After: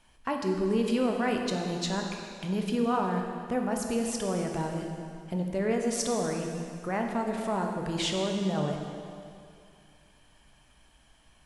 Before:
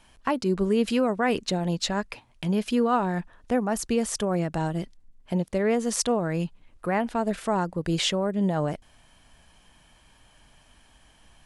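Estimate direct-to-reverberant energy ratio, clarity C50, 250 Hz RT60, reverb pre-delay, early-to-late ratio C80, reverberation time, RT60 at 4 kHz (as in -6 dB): 1.5 dB, 3.5 dB, 2.4 s, 6 ms, 4.0 dB, 2.4 s, 2.2 s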